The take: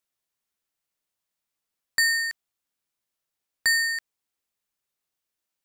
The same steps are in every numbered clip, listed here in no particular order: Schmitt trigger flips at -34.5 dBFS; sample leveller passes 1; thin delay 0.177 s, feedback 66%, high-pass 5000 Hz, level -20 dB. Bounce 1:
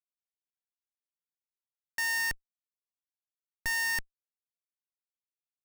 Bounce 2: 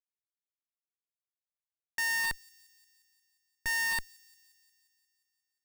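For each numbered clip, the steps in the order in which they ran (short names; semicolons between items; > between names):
sample leveller > thin delay > Schmitt trigger; Schmitt trigger > sample leveller > thin delay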